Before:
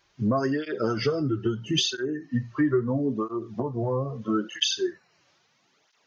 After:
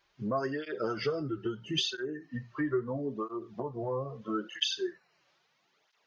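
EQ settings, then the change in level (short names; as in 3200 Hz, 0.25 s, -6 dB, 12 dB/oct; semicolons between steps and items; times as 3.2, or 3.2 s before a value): fifteen-band EQ 100 Hz -11 dB, 250 Hz -7 dB, 6300 Hz -6 dB; -4.5 dB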